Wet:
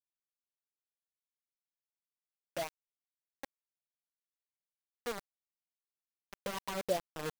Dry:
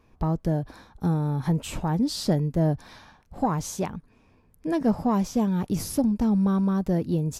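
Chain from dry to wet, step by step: auto swell 0.747 s; loudest bins only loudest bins 32; wah 2.3 Hz 480–1100 Hz, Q 7; bit-crush 7-bit; gain +4.5 dB

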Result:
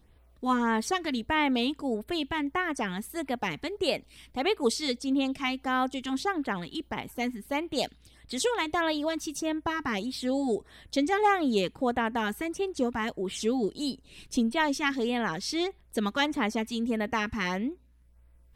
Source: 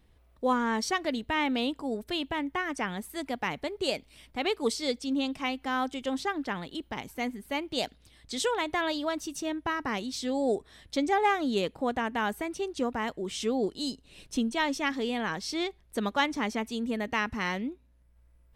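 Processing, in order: LFO notch sine 1.6 Hz 530–6700 Hz; gain +2.5 dB

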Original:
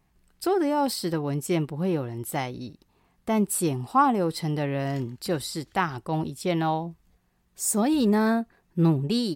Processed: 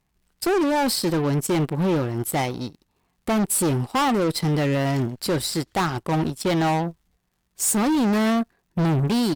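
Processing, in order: soft clip -25.5 dBFS, distortion -8 dB; crackle 180/s -54 dBFS; added harmonics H 7 -19 dB, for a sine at -24.5 dBFS; gain +8.5 dB

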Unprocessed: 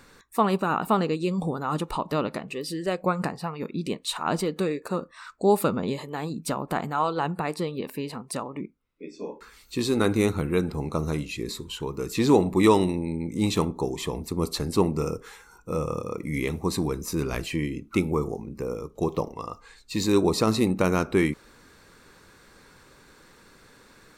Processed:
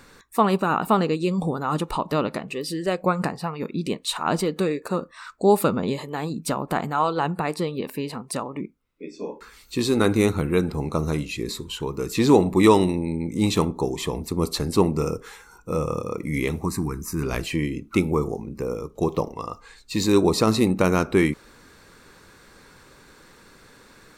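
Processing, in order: 16.65–17.23 fixed phaser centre 1400 Hz, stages 4; gain +3 dB

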